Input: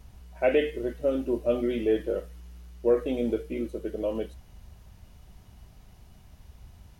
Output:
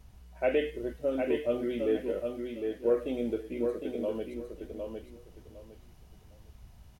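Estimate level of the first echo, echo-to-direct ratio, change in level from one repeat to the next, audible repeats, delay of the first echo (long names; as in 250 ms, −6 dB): −5.0 dB, −5.0 dB, −13.0 dB, 3, 758 ms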